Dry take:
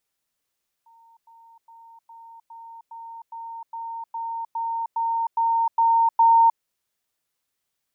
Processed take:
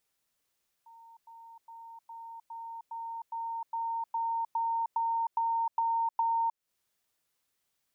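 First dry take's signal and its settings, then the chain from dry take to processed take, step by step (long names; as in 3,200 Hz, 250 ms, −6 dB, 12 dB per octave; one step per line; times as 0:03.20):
level staircase 917 Hz −51 dBFS, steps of 3 dB, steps 14, 0.31 s 0.10 s
downward compressor 6 to 1, threshold −29 dBFS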